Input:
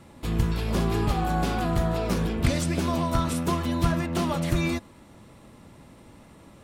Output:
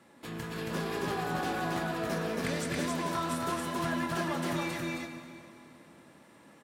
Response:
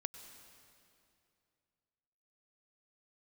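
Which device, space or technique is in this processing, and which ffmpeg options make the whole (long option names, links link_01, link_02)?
stadium PA: -filter_complex "[0:a]highpass=220,equalizer=frequency=1700:width_type=o:width=0.38:gain=7,asplit=2[link_01][link_02];[link_02]adelay=25,volume=-12dB[link_03];[link_01][link_03]amix=inputs=2:normalize=0,aecho=1:1:186.6|274.1:0.316|0.794[link_04];[1:a]atrim=start_sample=2205[link_05];[link_04][link_05]afir=irnorm=-1:irlink=0,volume=-5dB"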